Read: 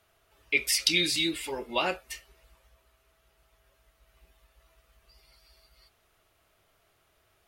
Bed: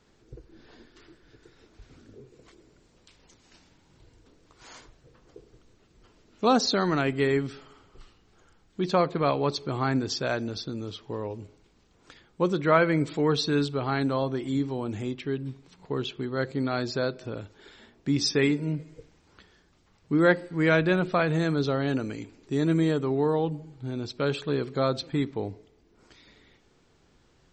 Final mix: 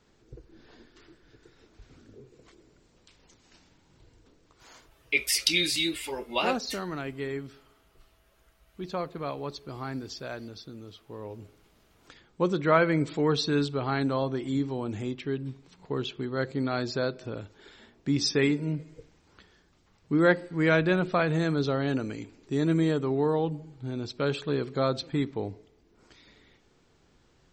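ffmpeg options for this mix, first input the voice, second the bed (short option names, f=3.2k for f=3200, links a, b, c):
-filter_complex "[0:a]adelay=4600,volume=0dB[a];[1:a]volume=7dB,afade=t=out:st=4.24:d=0.84:silence=0.398107,afade=t=in:st=11.09:d=0.58:silence=0.375837[b];[a][b]amix=inputs=2:normalize=0"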